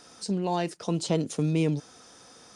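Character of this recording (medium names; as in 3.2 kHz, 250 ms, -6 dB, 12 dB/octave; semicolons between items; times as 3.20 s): noise floor -53 dBFS; spectral tilt -6.5 dB/octave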